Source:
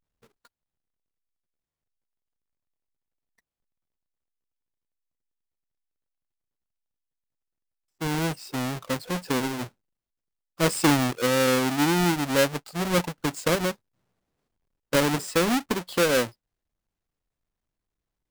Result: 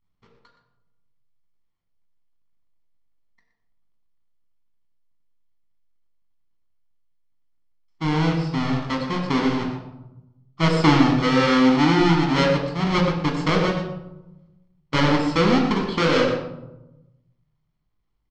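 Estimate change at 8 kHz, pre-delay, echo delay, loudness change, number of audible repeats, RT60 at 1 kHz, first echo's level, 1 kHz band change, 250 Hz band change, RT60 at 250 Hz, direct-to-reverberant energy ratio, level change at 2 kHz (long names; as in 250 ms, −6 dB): −9.5 dB, 10 ms, 120 ms, +4.5 dB, 1, 0.85 s, −11.5 dB, +5.5 dB, +6.5 dB, 1.4 s, 1.0 dB, +3.0 dB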